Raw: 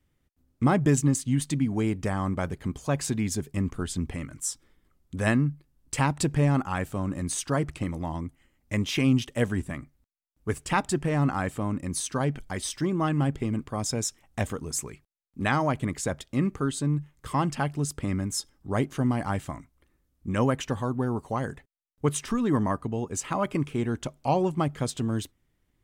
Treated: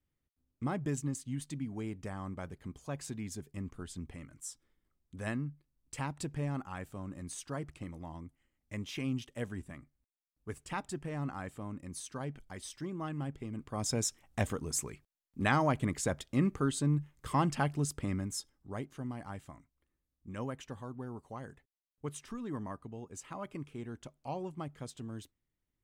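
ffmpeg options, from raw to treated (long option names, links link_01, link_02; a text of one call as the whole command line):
ffmpeg -i in.wav -af "volume=-3.5dB,afade=type=in:start_time=13.53:duration=0.41:silence=0.334965,afade=type=out:start_time=17.69:duration=1.15:silence=0.266073" out.wav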